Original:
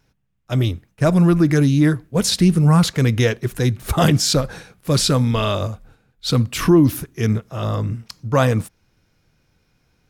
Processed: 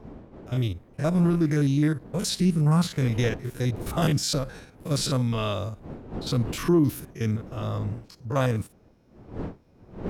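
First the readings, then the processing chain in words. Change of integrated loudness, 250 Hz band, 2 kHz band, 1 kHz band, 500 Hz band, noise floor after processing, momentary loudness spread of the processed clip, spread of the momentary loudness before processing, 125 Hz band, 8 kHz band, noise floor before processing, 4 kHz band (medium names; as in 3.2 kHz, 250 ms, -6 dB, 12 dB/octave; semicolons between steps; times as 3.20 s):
-8.0 dB, -7.5 dB, -9.0 dB, -8.5 dB, -8.0 dB, -57 dBFS, 15 LU, 10 LU, -7.5 dB, -9.0 dB, -66 dBFS, -9.0 dB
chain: spectrogram pixelated in time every 50 ms; wind noise 330 Hz -34 dBFS; trim -7 dB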